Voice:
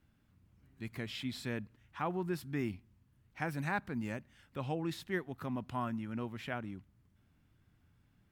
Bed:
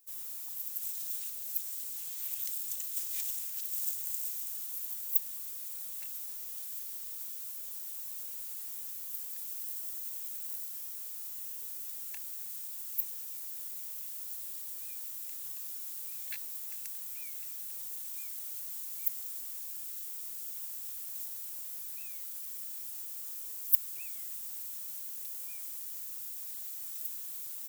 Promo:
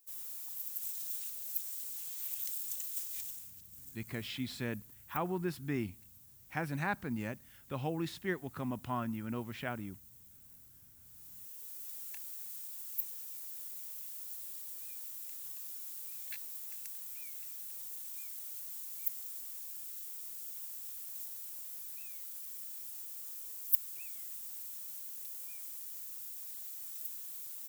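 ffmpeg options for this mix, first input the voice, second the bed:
ffmpeg -i stem1.wav -i stem2.wav -filter_complex "[0:a]adelay=3150,volume=0.5dB[link_01];[1:a]volume=12dB,afade=type=out:start_time=2.89:duration=0.73:silence=0.16788,afade=type=in:start_time=11:duration=0.94:silence=0.188365[link_02];[link_01][link_02]amix=inputs=2:normalize=0" out.wav

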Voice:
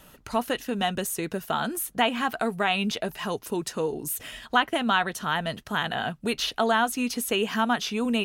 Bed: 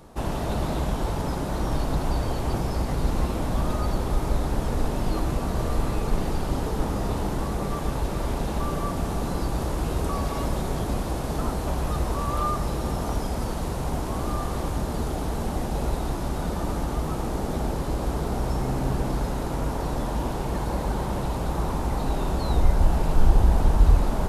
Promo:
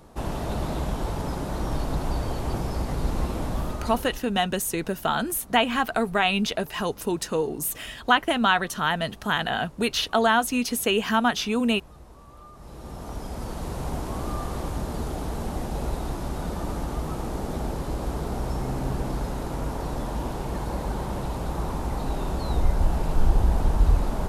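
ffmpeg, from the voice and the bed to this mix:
ffmpeg -i stem1.wav -i stem2.wav -filter_complex "[0:a]adelay=3550,volume=2.5dB[link_01];[1:a]volume=17.5dB,afade=type=out:start_time=3.45:duration=0.82:silence=0.1,afade=type=in:start_time=12.53:duration=1.29:silence=0.105925[link_02];[link_01][link_02]amix=inputs=2:normalize=0" out.wav

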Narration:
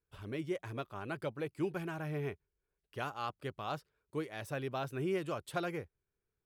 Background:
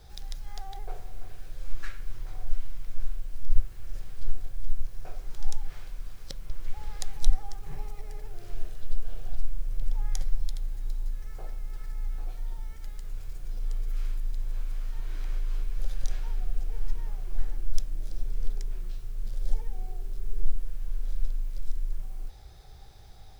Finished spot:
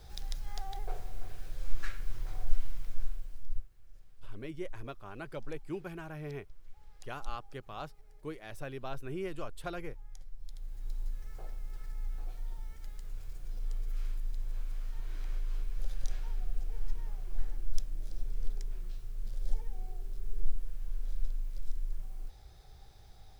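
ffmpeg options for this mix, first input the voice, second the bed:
ffmpeg -i stem1.wav -i stem2.wav -filter_complex "[0:a]adelay=4100,volume=-3.5dB[link_01];[1:a]volume=14dB,afade=type=out:start_time=2.69:duration=0.99:silence=0.112202,afade=type=in:start_time=10.37:duration=0.63:silence=0.188365[link_02];[link_01][link_02]amix=inputs=2:normalize=0" out.wav

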